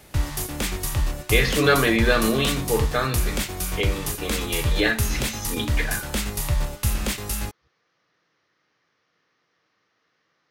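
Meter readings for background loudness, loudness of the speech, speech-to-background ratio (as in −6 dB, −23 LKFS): −27.0 LKFS, −24.0 LKFS, 3.0 dB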